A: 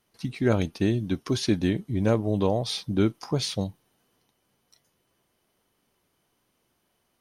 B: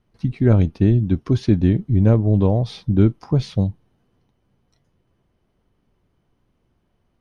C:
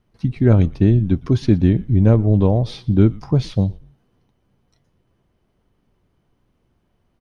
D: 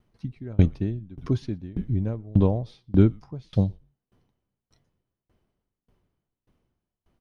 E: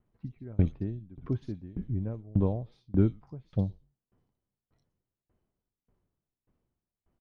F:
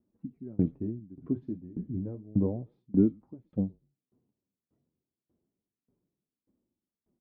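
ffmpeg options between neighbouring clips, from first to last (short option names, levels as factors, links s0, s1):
-af "aemphasis=mode=reproduction:type=riaa"
-filter_complex "[0:a]asplit=3[s0][s1][s2];[s1]adelay=118,afreqshift=-120,volume=0.0841[s3];[s2]adelay=236,afreqshift=-240,volume=0.0269[s4];[s0][s3][s4]amix=inputs=3:normalize=0,volume=1.19"
-af "aeval=exprs='val(0)*pow(10,-29*if(lt(mod(1.7*n/s,1),2*abs(1.7)/1000),1-mod(1.7*n/s,1)/(2*abs(1.7)/1000),(mod(1.7*n/s,1)-2*abs(1.7)/1000)/(1-2*abs(1.7)/1000))/20)':c=same"
-filter_complex "[0:a]highshelf=f=3500:g=-11,acrossover=split=3200[s0][s1];[s1]adelay=60[s2];[s0][s2]amix=inputs=2:normalize=0,volume=0.473"
-af "bandpass=f=270:t=q:w=1.4:csg=0,flanger=delay=3.4:depth=9.4:regen=-46:speed=0.3:shape=sinusoidal,volume=2.51"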